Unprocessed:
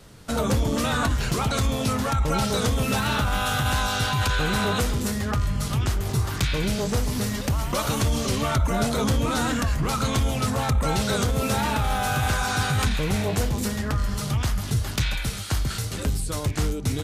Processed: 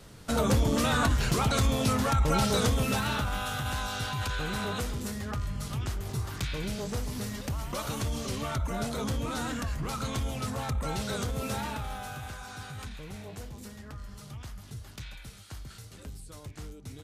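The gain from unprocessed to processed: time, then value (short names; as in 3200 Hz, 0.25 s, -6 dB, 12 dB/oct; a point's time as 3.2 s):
2.59 s -2 dB
3.52 s -9 dB
11.55 s -9 dB
12.36 s -18 dB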